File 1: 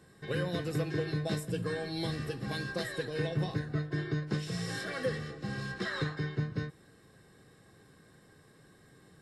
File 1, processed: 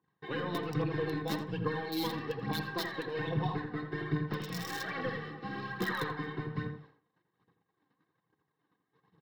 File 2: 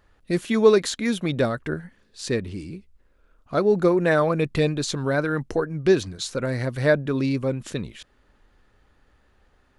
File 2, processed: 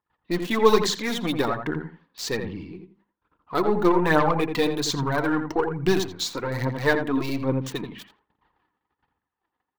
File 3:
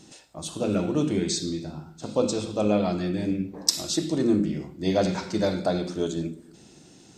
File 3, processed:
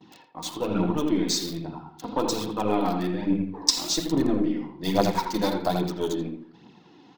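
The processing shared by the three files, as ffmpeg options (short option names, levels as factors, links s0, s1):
-filter_complex "[0:a]bandreject=f=50:t=h:w=6,bandreject=f=100:t=h:w=6,bandreject=f=150:t=h:w=6,bandreject=f=200:t=h:w=6,bandreject=f=250:t=h:w=6,agate=range=0.0631:threshold=0.00158:ratio=16:detection=peak,highpass=180,equalizer=f=240:t=q:w=4:g=-4,equalizer=f=390:t=q:w=4:g=-5,equalizer=f=570:t=q:w=4:g=-10,equalizer=f=960:t=q:w=4:g=8,equalizer=f=1500:t=q:w=4:g=-6,equalizer=f=2400:t=q:w=4:g=-4,lowpass=f=6900:w=0.5412,lowpass=f=6900:w=1.3066,bandreject=f=650:w=16,acrossover=split=3700[s0][s1];[s0]aeval=exprs='0.398*(cos(1*acos(clip(val(0)/0.398,-1,1)))-cos(1*PI/2))+0.0158*(cos(8*acos(clip(val(0)/0.398,-1,1)))-cos(8*PI/2))':c=same[s2];[s1]acrusher=bits=6:mix=0:aa=0.000001[s3];[s2][s3]amix=inputs=2:normalize=0,aphaser=in_gain=1:out_gain=1:delay=4.3:decay=0.49:speed=1.2:type=triangular,asplit=2[s4][s5];[s5]adelay=84,lowpass=f=1400:p=1,volume=0.531,asplit=2[s6][s7];[s7]adelay=84,lowpass=f=1400:p=1,volume=0.21,asplit=2[s8][s9];[s9]adelay=84,lowpass=f=1400:p=1,volume=0.21[s10];[s6][s8][s10]amix=inputs=3:normalize=0[s11];[s4][s11]amix=inputs=2:normalize=0,volume=1.33"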